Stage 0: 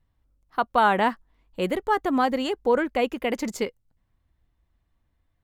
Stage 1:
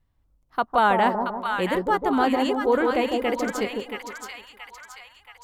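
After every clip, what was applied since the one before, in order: split-band echo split 1000 Hz, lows 0.154 s, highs 0.676 s, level -4 dB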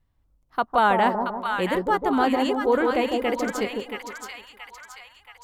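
nothing audible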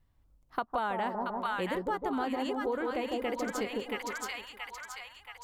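compressor, threshold -30 dBFS, peak gain reduction 14.5 dB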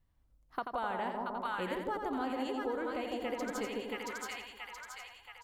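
feedback echo 86 ms, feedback 28%, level -6.5 dB; gain -4.5 dB

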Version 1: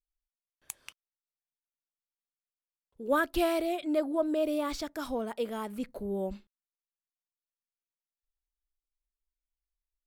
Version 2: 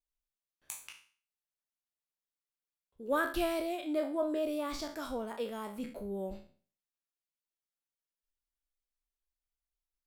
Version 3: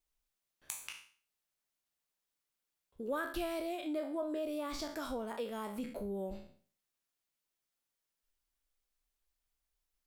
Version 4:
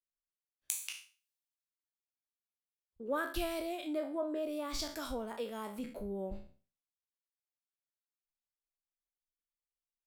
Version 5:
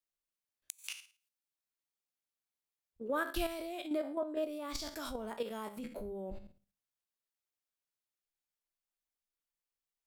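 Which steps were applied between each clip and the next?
spectral trails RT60 0.42 s; gain -5 dB
compressor 2.5:1, threshold -46 dBFS, peak gain reduction 13 dB; gain +6 dB
three-band expander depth 70%
notches 50/100/150/200 Hz; flipped gate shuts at -20 dBFS, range -27 dB; level quantiser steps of 9 dB; gain +3.5 dB

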